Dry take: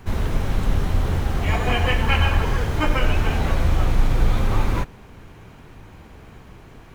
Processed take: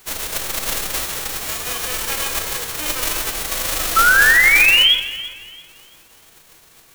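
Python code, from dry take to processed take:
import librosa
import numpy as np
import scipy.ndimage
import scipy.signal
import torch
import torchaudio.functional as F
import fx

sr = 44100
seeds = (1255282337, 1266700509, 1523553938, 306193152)

p1 = fx.envelope_flatten(x, sr, power=0.1)
p2 = fx.notch(p1, sr, hz=4900.0, q=28.0)
p3 = fx.spec_paint(p2, sr, seeds[0], shape='rise', start_s=3.96, length_s=0.99, low_hz=1300.0, high_hz=3400.0, level_db=-6.0)
p4 = p3 + fx.echo_alternate(p3, sr, ms=169, hz=2200.0, feedback_pct=53, wet_db=-11.0, dry=0)
p5 = fx.room_shoebox(p4, sr, seeds[1], volume_m3=920.0, walls='mixed', distance_m=0.67)
y = p5 * librosa.db_to_amplitude(-7.0)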